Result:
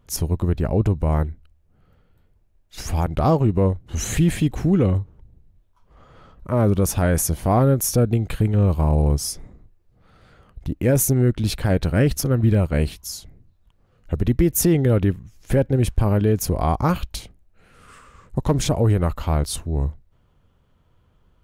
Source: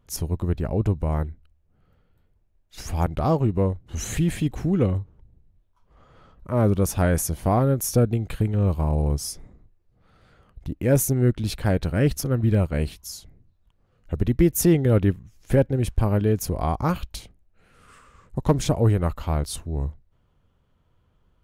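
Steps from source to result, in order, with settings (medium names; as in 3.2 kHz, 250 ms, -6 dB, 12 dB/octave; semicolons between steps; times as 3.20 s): peak limiter -13 dBFS, peak gain reduction 5.5 dB; trim +4.5 dB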